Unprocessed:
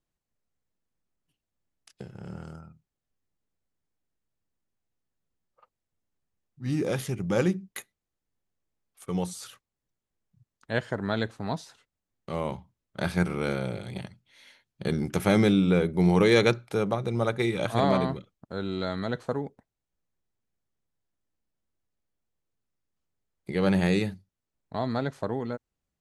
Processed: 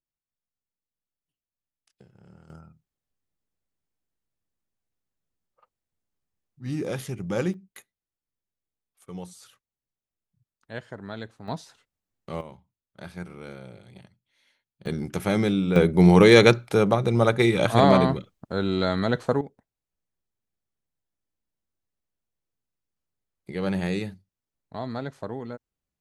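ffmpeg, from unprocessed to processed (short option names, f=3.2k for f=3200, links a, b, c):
-af "asetnsamples=n=441:p=0,asendcmd='2.5 volume volume -2dB;7.54 volume volume -8.5dB;11.48 volume volume -1dB;12.41 volume volume -12dB;14.86 volume volume -2dB;15.76 volume volume 6.5dB;19.41 volume volume -3.5dB',volume=-12.5dB"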